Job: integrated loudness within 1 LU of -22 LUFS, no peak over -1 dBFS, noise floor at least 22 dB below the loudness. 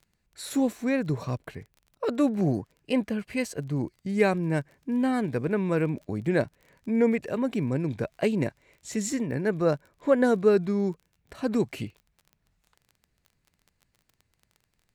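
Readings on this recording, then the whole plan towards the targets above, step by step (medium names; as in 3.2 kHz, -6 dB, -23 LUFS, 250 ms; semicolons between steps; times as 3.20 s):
tick rate 26 per s; loudness -27.5 LUFS; peak level -8.5 dBFS; loudness target -22.0 LUFS
-> de-click; trim +5.5 dB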